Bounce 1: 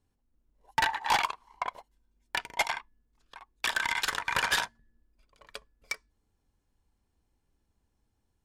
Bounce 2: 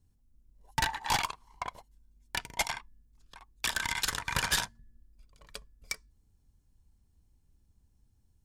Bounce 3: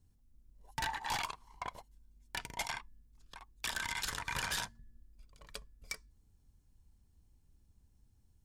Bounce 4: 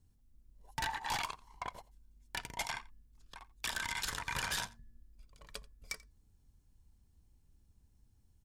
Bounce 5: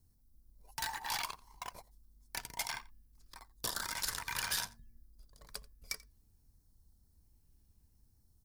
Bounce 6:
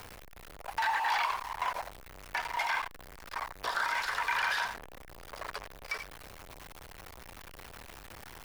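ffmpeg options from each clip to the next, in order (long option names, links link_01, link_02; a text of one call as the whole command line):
ffmpeg -i in.wav -af "bass=frequency=250:gain=14,treble=frequency=4000:gain=9,volume=-4.5dB" out.wav
ffmpeg -i in.wav -af "alimiter=level_in=3.5dB:limit=-24dB:level=0:latency=1:release=29,volume=-3.5dB" out.wav
ffmpeg -i in.wav -af "aecho=1:1:87:0.0841" out.wav
ffmpeg -i in.wav -filter_complex "[0:a]acrossover=split=840|3200[link_01][link_02][link_03];[link_01]alimiter=level_in=18dB:limit=-24dB:level=0:latency=1,volume=-18dB[link_04];[link_02]acrusher=samples=9:mix=1:aa=0.000001:lfo=1:lforange=14.4:lforate=0.62[link_05];[link_03]aexciter=amount=2.2:drive=2.5:freq=4200[link_06];[link_04][link_05][link_06]amix=inputs=3:normalize=0,volume=-1dB" out.wav
ffmpeg -i in.wav -filter_complex "[0:a]aeval=exprs='val(0)+0.5*0.02*sgn(val(0))':channel_layout=same,acrossover=split=540 2600:gain=0.1 1 0.251[link_01][link_02][link_03];[link_01][link_02][link_03]amix=inputs=3:normalize=0,acrossover=split=5100[link_04][link_05];[link_05]acompressor=threshold=-58dB:ratio=4:attack=1:release=60[link_06];[link_04][link_06]amix=inputs=2:normalize=0,volume=7.5dB" out.wav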